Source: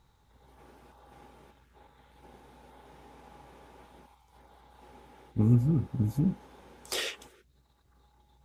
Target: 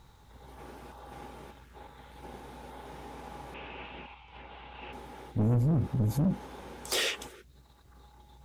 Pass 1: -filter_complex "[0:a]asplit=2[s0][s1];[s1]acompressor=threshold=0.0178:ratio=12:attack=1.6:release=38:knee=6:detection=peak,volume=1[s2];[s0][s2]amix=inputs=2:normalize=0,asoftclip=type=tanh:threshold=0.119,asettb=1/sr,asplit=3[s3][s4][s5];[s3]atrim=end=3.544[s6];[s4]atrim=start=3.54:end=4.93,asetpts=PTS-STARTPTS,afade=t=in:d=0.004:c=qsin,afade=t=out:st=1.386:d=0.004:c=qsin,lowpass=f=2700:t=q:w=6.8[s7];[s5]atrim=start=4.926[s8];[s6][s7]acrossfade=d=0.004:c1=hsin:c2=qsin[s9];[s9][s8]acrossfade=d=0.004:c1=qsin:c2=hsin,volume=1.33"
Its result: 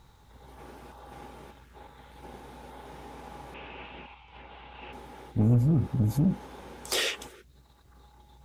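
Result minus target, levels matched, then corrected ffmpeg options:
saturation: distortion -6 dB
-filter_complex "[0:a]asplit=2[s0][s1];[s1]acompressor=threshold=0.0178:ratio=12:attack=1.6:release=38:knee=6:detection=peak,volume=1[s2];[s0][s2]amix=inputs=2:normalize=0,asoftclip=type=tanh:threshold=0.0596,asettb=1/sr,asplit=3[s3][s4][s5];[s3]atrim=end=3.544[s6];[s4]atrim=start=3.54:end=4.93,asetpts=PTS-STARTPTS,afade=t=in:d=0.004:c=qsin,afade=t=out:st=1.386:d=0.004:c=qsin,lowpass=f=2700:t=q:w=6.8[s7];[s5]atrim=start=4.926[s8];[s6][s7]acrossfade=d=0.004:c1=hsin:c2=qsin[s9];[s9][s8]acrossfade=d=0.004:c1=qsin:c2=hsin,volume=1.33"

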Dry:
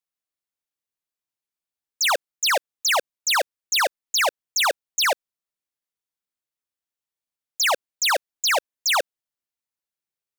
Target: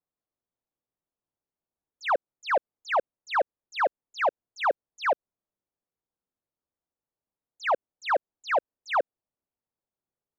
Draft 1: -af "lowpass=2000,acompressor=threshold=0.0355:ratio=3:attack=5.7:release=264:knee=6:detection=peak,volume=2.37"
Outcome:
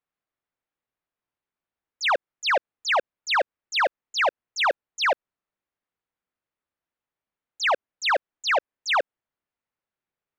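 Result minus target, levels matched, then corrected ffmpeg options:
2 kHz band +2.5 dB
-af "lowpass=800,acompressor=threshold=0.0355:ratio=3:attack=5.7:release=264:knee=6:detection=peak,volume=2.37"

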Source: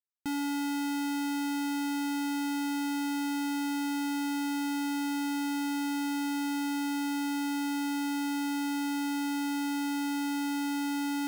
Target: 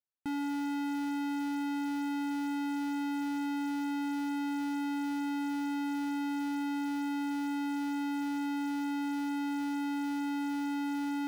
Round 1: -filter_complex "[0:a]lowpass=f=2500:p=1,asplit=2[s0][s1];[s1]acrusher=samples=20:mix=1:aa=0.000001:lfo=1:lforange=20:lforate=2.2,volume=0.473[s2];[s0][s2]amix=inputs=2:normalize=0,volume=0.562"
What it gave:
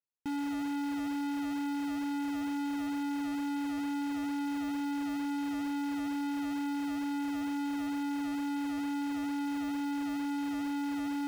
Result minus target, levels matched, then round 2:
decimation with a swept rate: distortion +9 dB
-filter_complex "[0:a]lowpass=f=2500:p=1,asplit=2[s0][s1];[s1]acrusher=samples=6:mix=1:aa=0.000001:lfo=1:lforange=6:lforate=2.2,volume=0.473[s2];[s0][s2]amix=inputs=2:normalize=0,volume=0.562"

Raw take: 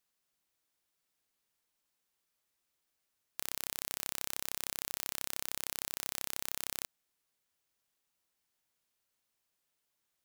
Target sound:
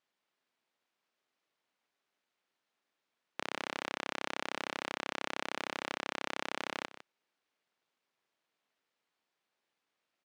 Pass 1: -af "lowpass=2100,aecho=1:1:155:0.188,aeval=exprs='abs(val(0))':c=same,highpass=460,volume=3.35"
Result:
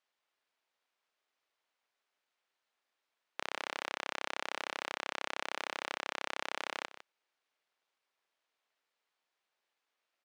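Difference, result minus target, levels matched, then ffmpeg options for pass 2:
250 Hz band -7.0 dB
-af "lowpass=2100,aecho=1:1:155:0.188,aeval=exprs='abs(val(0))':c=same,highpass=220,volume=3.35"

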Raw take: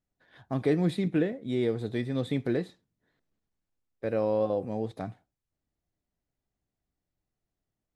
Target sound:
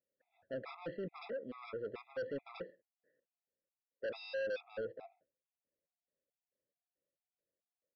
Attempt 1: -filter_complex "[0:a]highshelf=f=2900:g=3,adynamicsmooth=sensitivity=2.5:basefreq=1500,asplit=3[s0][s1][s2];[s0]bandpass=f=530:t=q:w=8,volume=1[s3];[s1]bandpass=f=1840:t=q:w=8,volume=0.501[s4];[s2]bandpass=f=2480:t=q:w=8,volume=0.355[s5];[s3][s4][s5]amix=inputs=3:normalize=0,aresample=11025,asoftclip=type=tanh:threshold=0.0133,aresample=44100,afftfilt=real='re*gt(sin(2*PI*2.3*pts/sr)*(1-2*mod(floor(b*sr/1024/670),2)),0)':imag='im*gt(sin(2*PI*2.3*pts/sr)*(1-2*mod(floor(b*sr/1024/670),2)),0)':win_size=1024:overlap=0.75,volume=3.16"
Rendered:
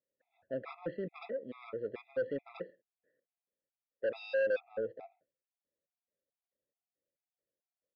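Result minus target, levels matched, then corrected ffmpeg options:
saturation: distortion -4 dB
-filter_complex "[0:a]highshelf=f=2900:g=3,adynamicsmooth=sensitivity=2.5:basefreq=1500,asplit=3[s0][s1][s2];[s0]bandpass=f=530:t=q:w=8,volume=1[s3];[s1]bandpass=f=1840:t=q:w=8,volume=0.501[s4];[s2]bandpass=f=2480:t=q:w=8,volume=0.355[s5];[s3][s4][s5]amix=inputs=3:normalize=0,aresample=11025,asoftclip=type=tanh:threshold=0.00531,aresample=44100,afftfilt=real='re*gt(sin(2*PI*2.3*pts/sr)*(1-2*mod(floor(b*sr/1024/670),2)),0)':imag='im*gt(sin(2*PI*2.3*pts/sr)*(1-2*mod(floor(b*sr/1024/670),2)),0)':win_size=1024:overlap=0.75,volume=3.16"

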